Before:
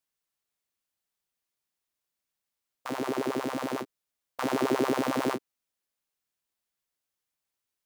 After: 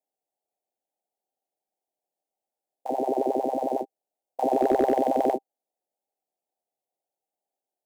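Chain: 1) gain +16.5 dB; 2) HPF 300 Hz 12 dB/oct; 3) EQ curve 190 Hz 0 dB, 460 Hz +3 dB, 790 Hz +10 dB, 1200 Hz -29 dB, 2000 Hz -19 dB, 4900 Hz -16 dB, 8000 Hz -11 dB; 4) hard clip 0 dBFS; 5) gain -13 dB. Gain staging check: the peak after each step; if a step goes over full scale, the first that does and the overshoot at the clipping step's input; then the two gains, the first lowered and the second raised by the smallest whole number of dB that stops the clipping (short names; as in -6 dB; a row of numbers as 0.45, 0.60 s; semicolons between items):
+3.5, +2.5, +4.5, 0.0, -13.0 dBFS; step 1, 4.5 dB; step 1 +11.5 dB, step 5 -8 dB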